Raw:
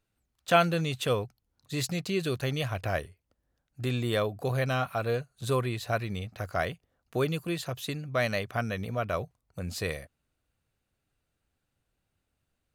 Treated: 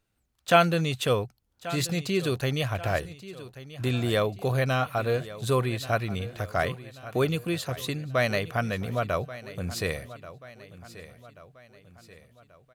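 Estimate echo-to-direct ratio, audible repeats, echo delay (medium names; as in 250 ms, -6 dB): -15.0 dB, 3, 1134 ms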